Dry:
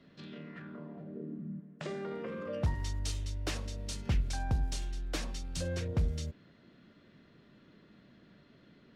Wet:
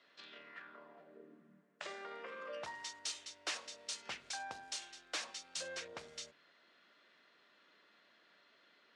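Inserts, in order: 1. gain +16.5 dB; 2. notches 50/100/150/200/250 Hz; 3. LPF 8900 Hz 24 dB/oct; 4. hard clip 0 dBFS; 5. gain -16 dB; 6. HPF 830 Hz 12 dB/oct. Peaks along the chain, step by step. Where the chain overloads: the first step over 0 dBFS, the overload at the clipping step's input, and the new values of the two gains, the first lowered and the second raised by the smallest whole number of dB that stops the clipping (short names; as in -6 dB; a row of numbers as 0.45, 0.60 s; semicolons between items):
-4.5, -4.5, -4.5, -4.5, -20.5, -25.0 dBFS; no overload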